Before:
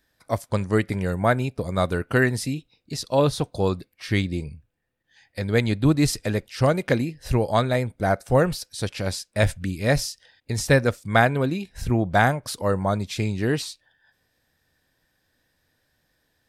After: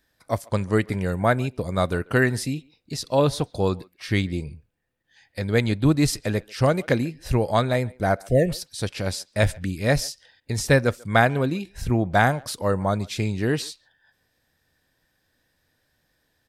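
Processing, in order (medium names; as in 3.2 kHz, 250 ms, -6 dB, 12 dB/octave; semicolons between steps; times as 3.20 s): spectral selection erased 8.28–8.49 s, 720–1700 Hz; speakerphone echo 140 ms, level -24 dB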